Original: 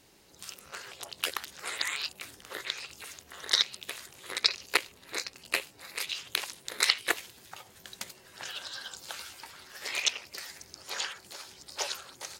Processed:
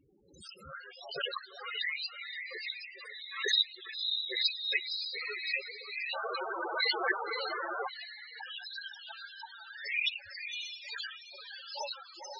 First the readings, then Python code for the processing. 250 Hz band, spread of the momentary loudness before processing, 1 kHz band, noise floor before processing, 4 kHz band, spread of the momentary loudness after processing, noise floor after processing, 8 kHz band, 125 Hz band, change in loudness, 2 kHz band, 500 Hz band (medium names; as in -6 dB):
-0.5 dB, 19 LU, +2.0 dB, -58 dBFS, -1.5 dB, 16 LU, -54 dBFS, -16.0 dB, no reading, -2.0 dB, 0.0 dB, +3.0 dB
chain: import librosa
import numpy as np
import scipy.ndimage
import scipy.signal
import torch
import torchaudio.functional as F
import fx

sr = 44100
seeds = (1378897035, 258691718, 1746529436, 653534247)

p1 = scipy.signal.sosfilt(scipy.signal.butter(2, 11000.0, 'lowpass', fs=sr, output='sos'), x)
p2 = fx.dynamic_eq(p1, sr, hz=7100.0, q=4.5, threshold_db=-52.0, ratio=4.0, max_db=-6)
p3 = p2 + fx.echo_diffused(p2, sr, ms=543, feedback_pct=43, wet_db=-4.0, dry=0)
p4 = fx.spec_paint(p3, sr, seeds[0], shape='noise', start_s=6.13, length_s=1.76, low_hz=330.0, high_hz=1600.0, level_db=-34.0)
p5 = fx.quant_dither(p4, sr, seeds[1], bits=8, dither='none')
p6 = p4 + F.gain(torch.from_numpy(p5), -6.5).numpy()
p7 = fx.spec_topn(p6, sr, count=8)
y = fx.pre_swell(p7, sr, db_per_s=83.0)